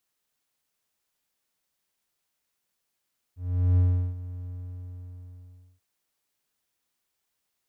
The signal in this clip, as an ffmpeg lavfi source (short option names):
-f lavfi -i "aevalsrc='0.188*(1-4*abs(mod(89.9*t+0.25,1)-0.5))':d=2.44:s=44100,afade=t=in:d=0.414,afade=t=out:st=0.414:d=0.371:silence=0.141,afade=t=out:st=1.12:d=1.32"